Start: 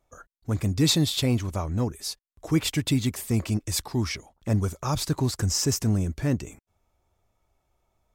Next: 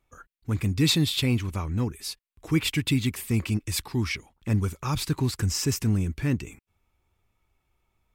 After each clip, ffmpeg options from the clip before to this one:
-af "equalizer=f=630:t=o:w=0.67:g=-10,equalizer=f=2500:t=o:w=0.67:g=6,equalizer=f=6300:t=o:w=0.67:g=-5"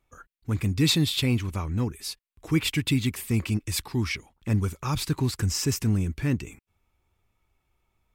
-af anull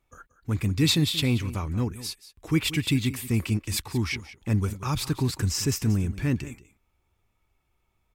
-af "aecho=1:1:181:0.168"

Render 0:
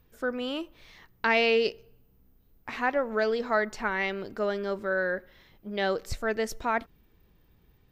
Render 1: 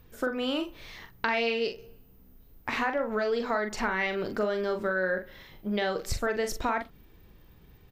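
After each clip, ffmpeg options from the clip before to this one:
-filter_complex "[0:a]asplit=2[s0][s1];[s1]alimiter=limit=0.0841:level=0:latency=1:release=214,volume=1.12[s2];[s0][s2]amix=inputs=2:normalize=0,acompressor=threshold=0.0501:ratio=4,asplit=2[s3][s4];[s4]adelay=43,volume=0.447[s5];[s3][s5]amix=inputs=2:normalize=0"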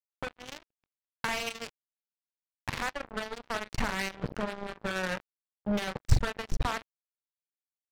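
-af "lowshelf=f=200:t=q:w=3:g=12,acrusher=bits=3:mix=0:aa=0.5,adynamicsmooth=sensitivity=7.5:basefreq=2800,volume=0.668"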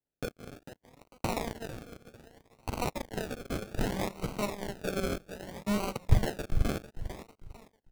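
-filter_complex "[0:a]aecho=1:1:448|896|1344:0.282|0.0902|0.0289,acrossover=split=160[s0][s1];[s1]acrusher=samples=36:mix=1:aa=0.000001:lfo=1:lforange=21.6:lforate=0.64[s2];[s0][s2]amix=inputs=2:normalize=0"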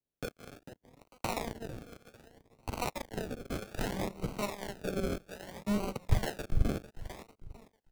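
-filter_complex "[0:a]acrossover=split=580[s0][s1];[s0]aeval=exprs='val(0)*(1-0.5/2+0.5/2*cos(2*PI*1.2*n/s))':c=same[s2];[s1]aeval=exprs='val(0)*(1-0.5/2-0.5/2*cos(2*PI*1.2*n/s))':c=same[s3];[s2][s3]amix=inputs=2:normalize=0"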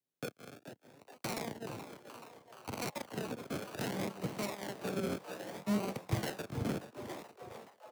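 -filter_complex "[0:a]highpass=f=110:w=0.5412,highpass=f=110:w=1.3066,asplit=8[s0][s1][s2][s3][s4][s5][s6][s7];[s1]adelay=427,afreqshift=130,volume=0.224[s8];[s2]adelay=854,afreqshift=260,volume=0.143[s9];[s3]adelay=1281,afreqshift=390,volume=0.0912[s10];[s4]adelay=1708,afreqshift=520,volume=0.0589[s11];[s5]adelay=2135,afreqshift=650,volume=0.0376[s12];[s6]adelay=2562,afreqshift=780,volume=0.024[s13];[s7]adelay=2989,afreqshift=910,volume=0.0153[s14];[s0][s8][s9][s10][s11][s12][s13][s14]amix=inputs=8:normalize=0,acrossover=split=330|4000[s15][s16][s17];[s16]aeval=exprs='0.0237*(abs(mod(val(0)/0.0237+3,4)-2)-1)':c=same[s18];[s15][s18][s17]amix=inputs=3:normalize=0,volume=0.891"

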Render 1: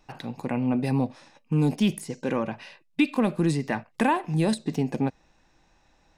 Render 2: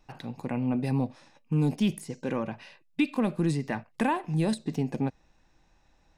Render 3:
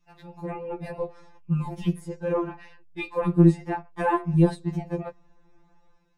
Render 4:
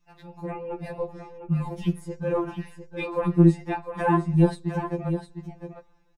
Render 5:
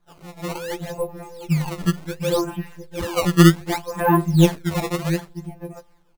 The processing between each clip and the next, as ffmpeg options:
-af "lowshelf=f=140:g=5.5,volume=0.596"
-filter_complex "[0:a]acrossover=split=1600[s0][s1];[s0]dynaudnorm=f=110:g=7:m=3.98[s2];[s2][s1]amix=inputs=2:normalize=0,afftfilt=real='re*2.83*eq(mod(b,8),0)':imag='im*2.83*eq(mod(b,8),0)':win_size=2048:overlap=0.75,volume=0.562"
-af "aecho=1:1:705:0.355"
-af "acrusher=samples=16:mix=1:aa=0.000001:lfo=1:lforange=25.6:lforate=0.67,volume=1.68"

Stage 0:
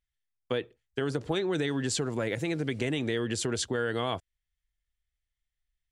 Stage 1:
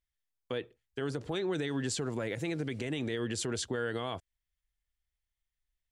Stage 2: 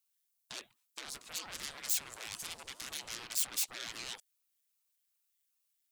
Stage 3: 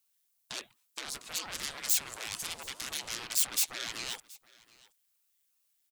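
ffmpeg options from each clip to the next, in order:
-af "alimiter=limit=0.0841:level=0:latency=1:release=56,volume=0.75"
-af "aeval=exprs='0.0668*sin(PI/2*3.55*val(0)/0.0668)':c=same,aderivative,aeval=exprs='val(0)*sin(2*PI*460*n/s+460*0.85/2.5*sin(2*PI*2.5*n/s))':c=same,volume=0.891"
-af "aecho=1:1:724:0.0708,volume=1.78"

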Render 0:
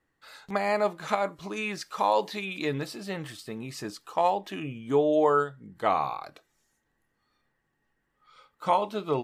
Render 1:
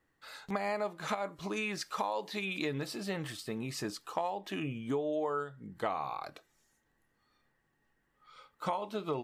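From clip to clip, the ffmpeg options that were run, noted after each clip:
-af "acompressor=threshold=0.0282:ratio=6"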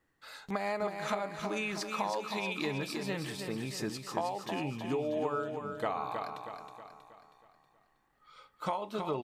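-af "aecho=1:1:319|638|957|1276|1595|1914:0.473|0.227|0.109|0.0523|0.0251|0.0121"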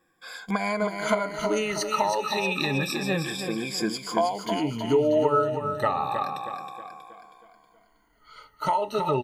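-af "afftfilt=real='re*pow(10,18/40*sin(2*PI*(1.8*log(max(b,1)*sr/1024/100)/log(2)-(-0.29)*(pts-256)/sr)))':imag='im*pow(10,18/40*sin(2*PI*(1.8*log(max(b,1)*sr/1024/100)/log(2)-(-0.29)*(pts-256)/sr)))':win_size=1024:overlap=0.75,volume=1.88"

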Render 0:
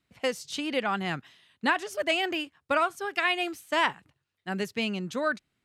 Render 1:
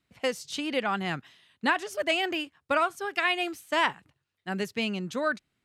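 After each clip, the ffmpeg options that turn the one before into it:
-af anull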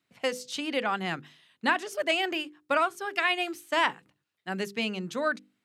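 -af "highpass=150,bandreject=f=50:t=h:w=6,bandreject=f=100:t=h:w=6,bandreject=f=150:t=h:w=6,bandreject=f=200:t=h:w=6,bandreject=f=250:t=h:w=6,bandreject=f=300:t=h:w=6,bandreject=f=350:t=h:w=6,bandreject=f=400:t=h:w=6,bandreject=f=450:t=h:w=6,bandreject=f=500:t=h:w=6"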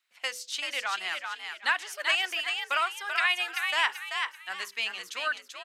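-filter_complex "[0:a]highpass=1300,asplit=2[s0][s1];[s1]asplit=4[s2][s3][s4][s5];[s2]adelay=386,afreqshift=69,volume=0.562[s6];[s3]adelay=772,afreqshift=138,volume=0.186[s7];[s4]adelay=1158,afreqshift=207,volume=0.061[s8];[s5]adelay=1544,afreqshift=276,volume=0.0202[s9];[s6][s7][s8][s9]amix=inputs=4:normalize=0[s10];[s0][s10]amix=inputs=2:normalize=0,volume=1.26"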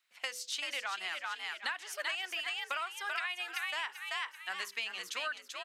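-af "acompressor=threshold=0.02:ratio=6"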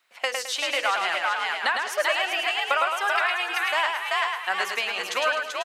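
-af "equalizer=f=610:t=o:w=2.4:g=11,aecho=1:1:107|214|321|428:0.596|0.208|0.073|0.0255,volume=2.24"

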